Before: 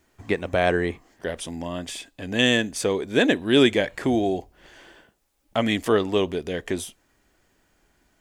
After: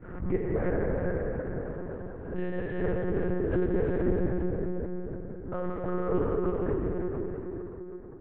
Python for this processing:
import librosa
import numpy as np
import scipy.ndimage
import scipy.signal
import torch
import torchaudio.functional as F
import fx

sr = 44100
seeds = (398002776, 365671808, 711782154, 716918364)

y = scipy.signal.sosfilt(scipy.signal.butter(4, 1300.0, 'lowpass', fs=sr, output='sos'), x)
y = fx.peak_eq(y, sr, hz=760.0, db=-11.0, octaves=0.91)
y = fx.transient(y, sr, attack_db=7, sustain_db=-9)
y = fx.granulator(y, sr, seeds[0], grain_ms=100.0, per_s=20.0, spray_ms=33.0, spread_st=0)
y = fx.tremolo_random(y, sr, seeds[1], hz=3.5, depth_pct=55)
y = fx.comb_fb(y, sr, f0_hz=66.0, decay_s=0.85, harmonics='all', damping=0.0, mix_pct=40)
y = fx.echo_feedback(y, sr, ms=325, feedback_pct=32, wet_db=-4.0)
y = fx.rev_plate(y, sr, seeds[2], rt60_s=4.5, hf_ratio=0.6, predelay_ms=0, drr_db=-4.5)
y = fx.lpc_monotone(y, sr, seeds[3], pitch_hz=180.0, order=8)
y = fx.pre_swell(y, sr, db_per_s=70.0)
y = y * 10.0 ** (-4.0 / 20.0)